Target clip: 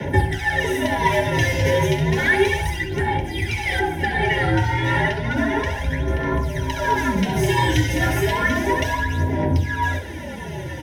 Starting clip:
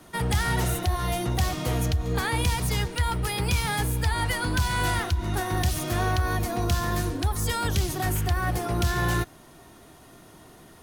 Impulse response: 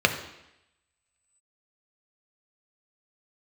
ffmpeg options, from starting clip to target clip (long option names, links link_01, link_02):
-filter_complex "[0:a]asuperstop=centerf=1300:order=20:qfactor=3.6,equalizer=frequency=4200:width=2.5:gain=-6,aecho=1:1:66|738:0.376|0.447,aphaser=in_gain=1:out_gain=1:delay=5:decay=0.76:speed=0.32:type=sinusoidal,afreqshift=-86,acompressor=threshold=-30dB:ratio=6[link_01];[1:a]atrim=start_sample=2205,afade=type=out:start_time=0.2:duration=0.01,atrim=end_sample=9261,asetrate=35280,aresample=44100[link_02];[link_01][link_02]afir=irnorm=-1:irlink=0,flanger=delay=1.9:depth=9.7:regen=-69:speed=0.76:shape=sinusoidal,asettb=1/sr,asplit=3[link_03][link_04][link_05];[link_03]atrim=end=3.794[link_06];[link_04]atrim=start=3.79:end=6.08,asetpts=PTS-STARTPTS,afade=type=in:duration=0.004:curve=qsin,afade=type=out:start_time=2.286:duration=0.004:curve=qsin,highshelf=frequency=3300:gain=-10.5[link_07];[link_05]atrim=start=6.076[link_08];[link_06][link_07]acrossfade=duration=0.004:curve1=hsin:curve2=qsin[link_09];[link_09][link_08]acrossfade=duration=0.004:curve1=qsin:curve2=hsin,volume=2.5dB"